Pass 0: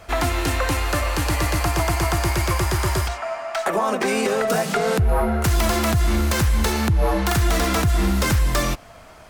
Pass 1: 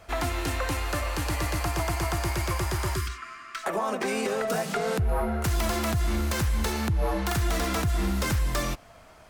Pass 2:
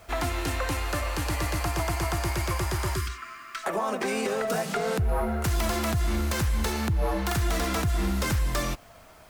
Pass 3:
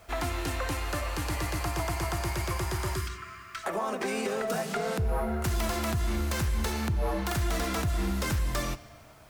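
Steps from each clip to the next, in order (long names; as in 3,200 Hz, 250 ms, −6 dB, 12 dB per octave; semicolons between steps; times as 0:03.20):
gain on a spectral selection 0:02.95–0:03.64, 410–1,000 Hz −25 dB; level −7 dB
background noise white −63 dBFS
convolution reverb RT60 1.6 s, pre-delay 24 ms, DRR 15 dB; level −3 dB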